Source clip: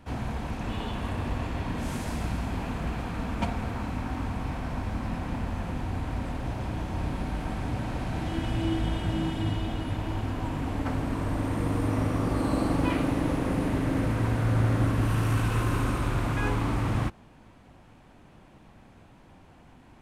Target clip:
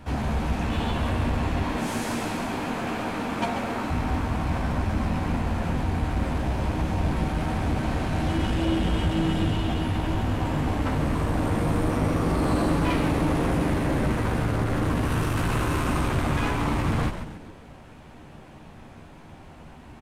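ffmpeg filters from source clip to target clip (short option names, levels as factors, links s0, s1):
-filter_complex "[0:a]asettb=1/sr,asplit=3[s0][s1][s2];[s0]atrim=end=1.634[s3];[s1]atrim=start=1.63:end=3.9,asetpts=PTS-STARTPTS,afade=t=in:d=0.004:c=qsin,afade=t=out:st=2.266:d=0.004:c=qsin,highpass=f=220:w=0.5412,highpass=f=220:w=1.3066[s4];[s2]atrim=start=3.896[s5];[s3][s4]acrossfade=d=0.004:c1=hsin:c2=qsin[s6];[s6][s5]acrossfade=d=0.004:c1=qsin:c2=hsin,asoftclip=type=tanh:threshold=0.0501,asplit=2[s7][s8];[s8]adelay=13,volume=0.531[s9];[s7][s9]amix=inputs=2:normalize=0,asplit=6[s10][s11][s12][s13][s14][s15];[s11]adelay=137,afreqshift=-130,volume=0.398[s16];[s12]adelay=274,afreqshift=-260,volume=0.172[s17];[s13]adelay=411,afreqshift=-390,volume=0.0733[s18];[s14]adelay=548,afreqshift=-520,volume=0.0316[s19];[s15]adelay=685,afreqshift=-650,volume=0.0136[s20];[s10][s16][s17][s18][s19][s20]amix=inputs=6:normalize=0,volume=2"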